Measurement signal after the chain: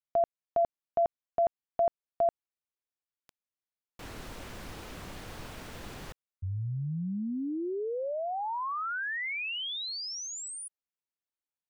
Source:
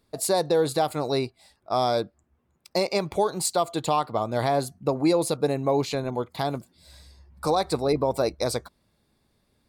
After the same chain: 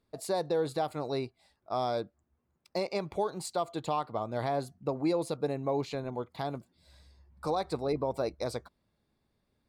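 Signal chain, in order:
high-shelf EQ 5,500 Hz −10 dB
level −7.5 dB

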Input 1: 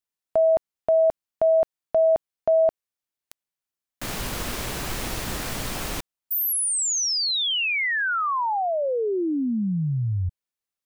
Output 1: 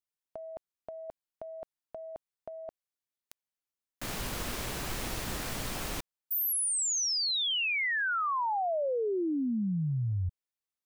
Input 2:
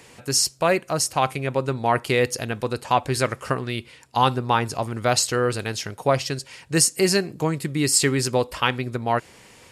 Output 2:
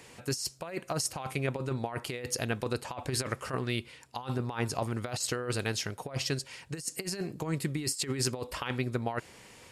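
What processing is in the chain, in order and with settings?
compressor whose output falls as the input rises −24 dBFS, ratio −0.5
level −7.5 dB

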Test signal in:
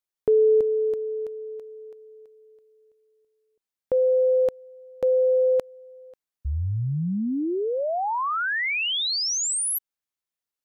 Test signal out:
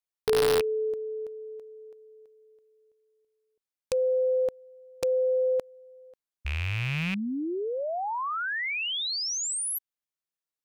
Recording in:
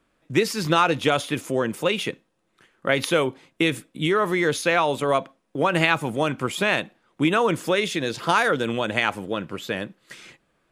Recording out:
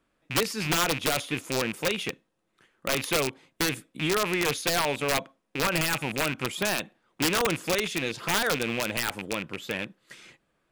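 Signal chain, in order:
loose part that buzzes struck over −32 dBFS, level −16 dBFS
wrap-around overflow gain 12 dB
level −5 dB

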